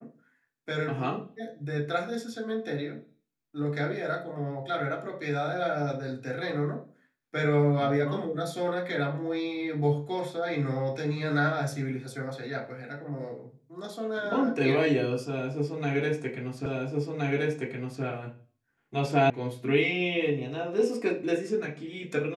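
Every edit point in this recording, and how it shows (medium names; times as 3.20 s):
16.66 s: repeat of the last 1.37 s
19.30 s: sound stops dead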